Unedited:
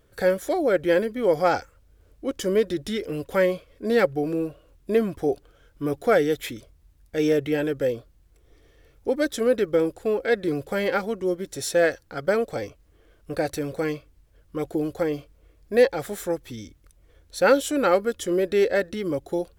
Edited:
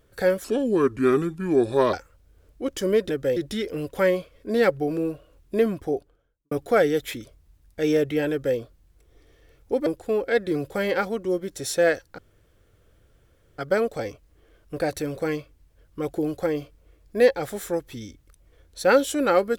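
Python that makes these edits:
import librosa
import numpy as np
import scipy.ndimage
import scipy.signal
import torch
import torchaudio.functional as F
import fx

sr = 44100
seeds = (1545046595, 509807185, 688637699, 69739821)

y = fx.studio_fade_out(x, sr, start_s=5.0, length_s=0.87)
y = fx.edit(y, sr, fx.speed_span(start_s=0.44, length_s=1.12, speed=0.75),
    fx.duplicate(start_s=7.66, length_s=0.27, to_s=2.72),
    fx.cut(start_s=9.22, length_s=0.61),
    fx.insert_room_tone(at_s=12.15, length_s=1.4), tone=tone)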